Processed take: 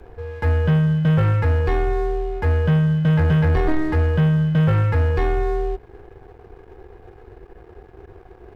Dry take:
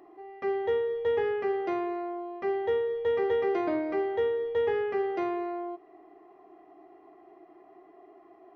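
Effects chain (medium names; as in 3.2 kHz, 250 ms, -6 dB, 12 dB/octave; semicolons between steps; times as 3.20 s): frequency shift -310 Hz; waveshaping leveller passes 2; trim +6.5 dB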